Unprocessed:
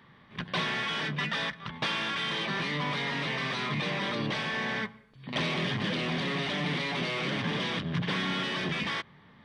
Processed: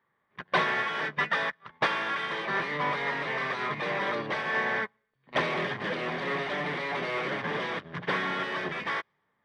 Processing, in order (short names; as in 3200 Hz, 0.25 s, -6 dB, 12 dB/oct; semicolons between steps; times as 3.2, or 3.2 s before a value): band shelf 860 Hz +10.5 dB 2.9 oct; thin delay 0.116 s, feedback 63%, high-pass 3100 Hz, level -24 dB; upward expander 2.5:1, over -37 dBFS